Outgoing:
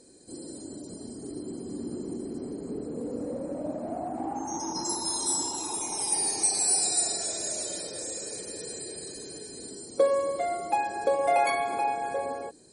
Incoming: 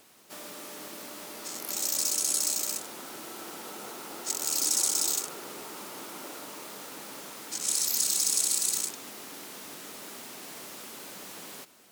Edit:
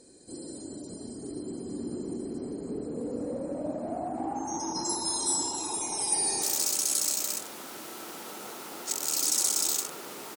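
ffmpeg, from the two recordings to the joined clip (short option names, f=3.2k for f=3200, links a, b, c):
-filter_complex "[0:a]apad=whole_dur=10.36,atrim=end=10.36,atrim=end=6.422[a];[1:a]atrim=start=1.808:end=5.75[b];[a][b]acrossfade=d=0.004:c1=hsin:c2=hsin,asplit=2[c][d];[d]afade=t=in:st=6.16:d=0.01,afade=t=out:st=6.42:d=0.01,aecho=0:1:130|260|390|520|650|780|910|1040:0.530884|0.318531|0.191118|0.114671|0.0688026|0.0412816|0.0247689|0.0148614[e];[c][e]amix=inputs=2:normalize=0"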